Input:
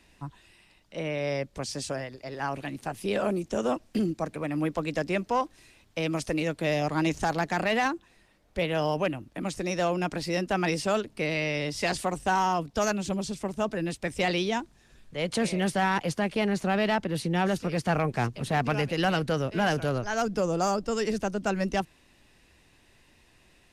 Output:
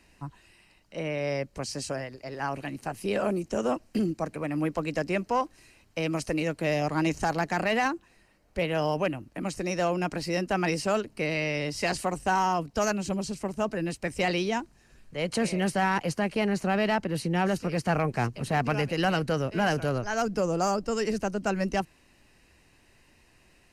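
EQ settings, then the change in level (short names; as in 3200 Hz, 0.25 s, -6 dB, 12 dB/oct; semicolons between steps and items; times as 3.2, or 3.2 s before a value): notch 3500 Hz, Q 5.8; 0.0 dB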